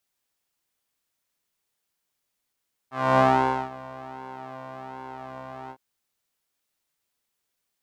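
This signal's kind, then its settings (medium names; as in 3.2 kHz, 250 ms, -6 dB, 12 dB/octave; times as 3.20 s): synth patch with pulse-width modulation C3, interval -12 st, filter bandpass, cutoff 760 Hz, Q 2.1, filter envelope 0.5 oct, attack 274 ms, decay 0.51 s, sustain -22 dB, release 0.07 s, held 2.79 s, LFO 1.3 Hz, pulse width 26%, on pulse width 5%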